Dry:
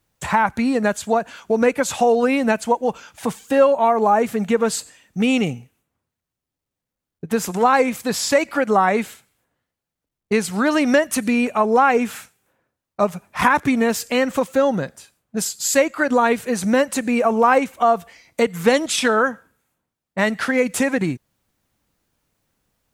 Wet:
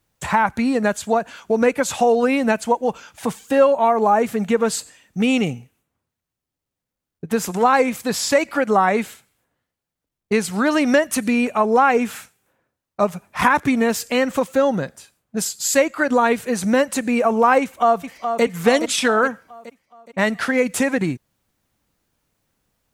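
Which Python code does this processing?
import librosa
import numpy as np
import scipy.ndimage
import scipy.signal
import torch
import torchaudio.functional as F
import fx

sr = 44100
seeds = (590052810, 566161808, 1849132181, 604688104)

y = fx.echo_throw(x, sr, start_s=17.61, length_s=0.82, ms=420, feedback_pct=50, wet_db=-7.5)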